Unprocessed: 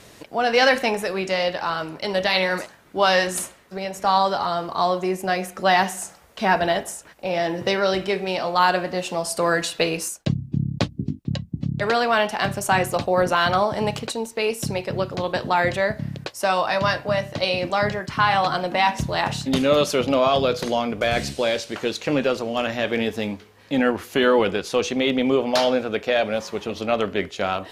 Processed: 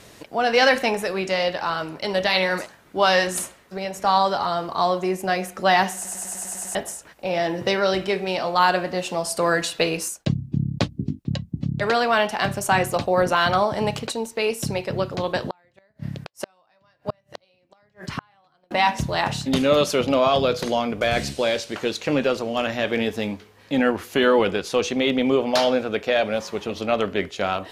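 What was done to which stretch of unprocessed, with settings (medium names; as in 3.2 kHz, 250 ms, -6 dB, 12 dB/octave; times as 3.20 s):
5.95 s: stutter in place 0.10 s, 8 plays
15.46–18.71 s: inverted gate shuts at -15 dBFS, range -40 dB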